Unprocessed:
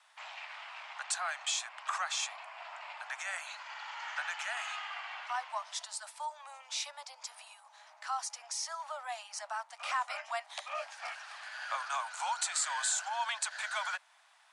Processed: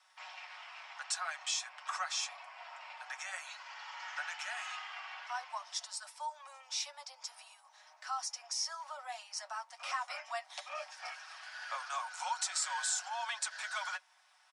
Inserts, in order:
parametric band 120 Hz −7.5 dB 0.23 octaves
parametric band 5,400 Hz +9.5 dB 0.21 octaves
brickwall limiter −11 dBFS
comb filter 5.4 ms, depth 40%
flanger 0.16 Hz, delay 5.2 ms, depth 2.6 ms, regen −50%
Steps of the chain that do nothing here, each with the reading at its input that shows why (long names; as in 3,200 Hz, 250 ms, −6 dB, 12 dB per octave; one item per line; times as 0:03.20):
parametric band 120 Hz: nothing at its input below 480 Hz
brickwall limiter −11 dBFS: peak of its input −19.0 dBFS